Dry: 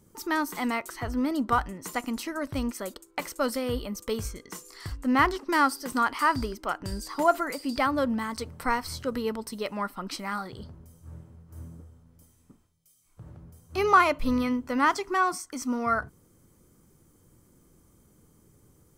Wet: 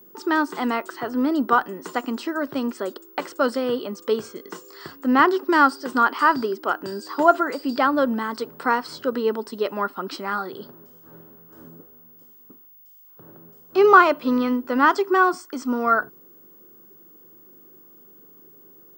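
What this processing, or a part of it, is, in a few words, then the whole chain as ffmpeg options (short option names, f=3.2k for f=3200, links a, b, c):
old television with a line whistle: -filter_complex "[0:a]asettb=1/sr,asplit=3[a][b][c];[a]atrim=end=10.614[d];[b]atrim=start=10.61:end=11.69,asetpts=PTS-STARTPTS,afade=t=in:d=0.004:c=qsin,afade=t=out:st=1.076:d=0.004:c=qsin,equalizer=f=2.4k:w=0.4:g=3.5[e];[c]atrim=start=11.686[f];[d][e]acrossfade=d=0.004:c1=hsin:c2=qsin[g];[g][f]acrossfade=d=0.004:c1=qsin:c2=hsin,highpass=f=190:w=0.5412,highpass=f=190:w=1.3066,equalizer=f=200:t=q:w=4:g=-3,equalizer=f=390:t=q:w=4:g=7,equalizer=f=1.5k:t=q:w=4:g=4,equalizer=f=2.2k:t=q:w=4:g=-9,equalizer=f=4.2k:t=q:w=4:g=-3,equalizer=f=6.1k:t=q:w=4:g=-9,lowpass=f=6.6k:w=0.5412,lowpass=f=6.6k:w=1.3066,aeval=exprs='val(0)+0.00224*sin(2*PI*15625*n/s)':c=same,volume=5.5dB"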